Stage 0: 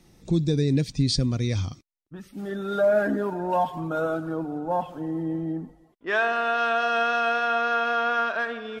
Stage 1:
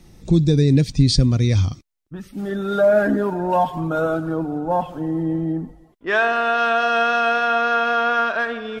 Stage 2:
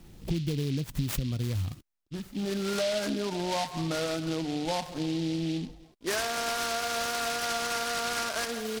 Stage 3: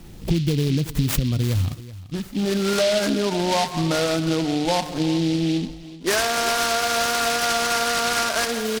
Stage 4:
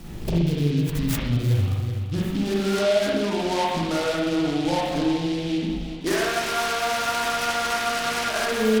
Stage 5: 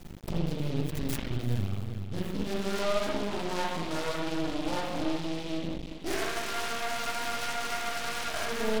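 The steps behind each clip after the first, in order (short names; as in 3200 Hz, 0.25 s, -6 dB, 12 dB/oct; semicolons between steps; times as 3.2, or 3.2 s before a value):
low shelf 110 Hz +8.5 dB; gain +5 dB
compressor, threshold -24 dBFS, peak gain reduction 13.5 dB; noise-modulated delay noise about 3400 Hz, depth 0.1 ms; gain -3.5 dB
echo 0.38 s -16.5 dB; gain +9 dB
compressor 10:1, threshold -26 dBFS, peak gain reduction 11.5 dB; spring tank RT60 1 s, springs 41/59 ms, chirp 65 ms, DRR -4 dB; gain +1.5 dB
half-wave rectifier; gain -4 dB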